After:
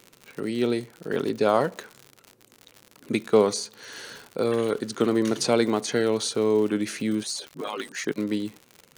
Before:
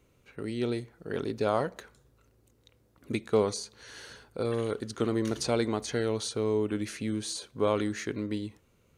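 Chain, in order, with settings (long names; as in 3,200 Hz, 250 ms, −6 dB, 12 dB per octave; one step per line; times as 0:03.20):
0:07.23–0:08.18: harmonic-percussive split with one part muted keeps percussive
high-pass filter 140 Hz 24 dB per octave
surface crackle 96 per second −39 dBFS
level +6.5 dB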